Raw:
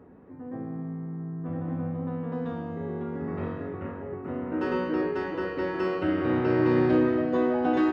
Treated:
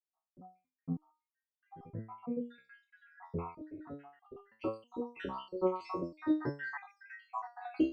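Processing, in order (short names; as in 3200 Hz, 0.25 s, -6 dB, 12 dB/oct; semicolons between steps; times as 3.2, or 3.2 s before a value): random spectral dropouts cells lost 81%; gate with hold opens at -54 dBFS; stepped resonator 3.1 Hz 66–400 Hz; gain +8 dB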